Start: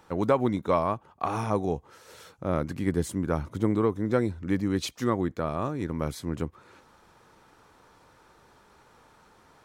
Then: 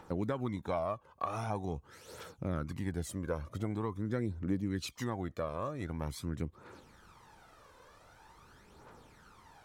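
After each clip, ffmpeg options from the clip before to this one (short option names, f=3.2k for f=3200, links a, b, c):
-af "aphaser=in_gain=1:out_gain=1:delay=2:decay=0.57:speed=0.45:type=triangular,acompressor=threshold=-35dB:ratio=2,volume=-2.5dB"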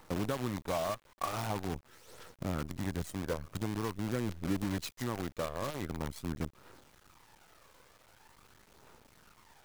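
-af "acrusher=bits=7:dc=4:mix=0:aa=0.000001"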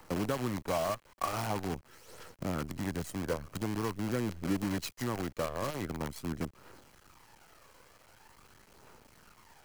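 -filter_complex "[0:a]bandreject=f=3.6k:w=12,acrossover=split=130|1500|3200[a][b][c][d];[a]alimiter=level_in=18.5dB:limit=-24dB:level=0:latency=1,volume=-18.5dB[e];[e][b][c][d]amix=inputs=4:normalize=0,volume=2dB"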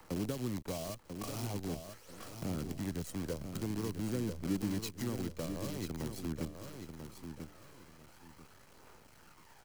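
-filter_complex "[0:a]acrossover=split=480|3000[a][b][c];[b]acompressor=threshold=-49dB:ratio=6[d];[a][d][c]amix=inputs=3:normalize=0,aecho=1:1:991|1982|2973:0.422|0.105|0.0264,volume=-2dB"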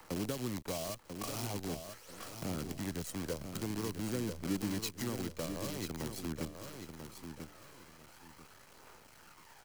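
-af "lowshelf=f=450:g=-6,volume=3.5dB"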